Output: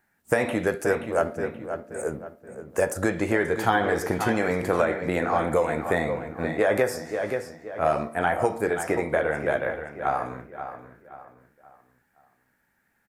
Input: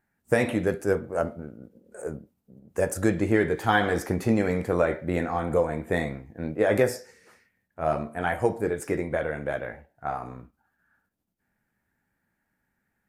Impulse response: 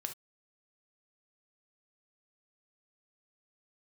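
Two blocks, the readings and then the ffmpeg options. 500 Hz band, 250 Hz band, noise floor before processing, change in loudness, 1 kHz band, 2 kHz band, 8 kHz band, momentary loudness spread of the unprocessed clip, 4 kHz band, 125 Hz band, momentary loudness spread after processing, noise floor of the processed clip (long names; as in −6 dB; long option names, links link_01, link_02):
+1.5 dB, −1.0 dB, −78 dBFS, +1.0 dB, +4.0 dB, +3.0 dB, +2.0 dB, 14 LU, +0.5 dB, −2.5 dB, 11 LU, −70 dBFS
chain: -filter_complex "[0:a]lowshelf=frequency=350:gain=-8.5,asplit=2[link_01][link_02];[link_02]adelay=527,lowpass=frequency=3100:poles=1,volume=-11dB,asplit=2[link_03][link_04];[link_04]adelay=527,lowpass=frequency=3100:poles=1,volume=0.38,asplit=2[link_05][link_06];[link_06]adelay=527,lowpass=frequency=3100:poles=1,volume=0.38,asplit=2[link_07][link_08];[link_08]adelay=527,lowpass=frequency=3100:poles=1,volume=0.38[link_09];[link_03][link_05][link_07][link_09]amix=inputs=4:normalize=0[link_10];[link_01][link_10]amix=inputs=2:normalize=0,acrossover=split=670|1500[link_11][link_12][link_13];[link_11]acompressor=threshold=-31dB:ratio=4[link_14];[link_12]acompressor=threshold=-33dB:ratio=4[link_15];[link_13]acompressor=threshold=-42dB:ratio=4[link_16];[link_14][link_15][link_16]amix=inputs=3:normalize=0,volume=8dB"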